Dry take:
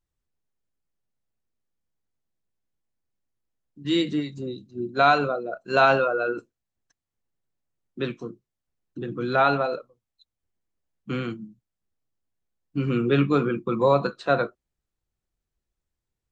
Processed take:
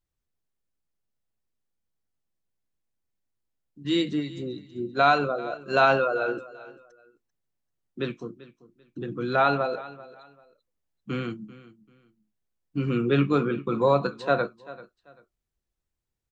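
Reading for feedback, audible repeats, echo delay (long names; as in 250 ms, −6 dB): 26%, 2, 390 ms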